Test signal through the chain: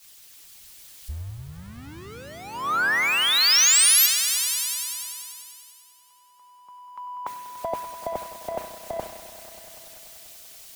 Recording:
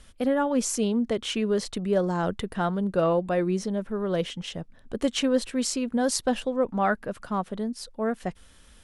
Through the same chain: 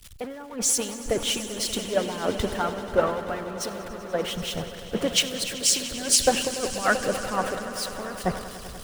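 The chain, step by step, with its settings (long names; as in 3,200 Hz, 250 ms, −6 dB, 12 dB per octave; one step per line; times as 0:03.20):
converter with a step at zero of −30 dBFS
harmonic and percussive parts rebalanced harmonic −14 dB
echo that builds up and dies away 97 ms, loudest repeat 5, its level −12 dB
boost into a limiter +11 dB
multiband upward and downward expander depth 100%
level −9 dB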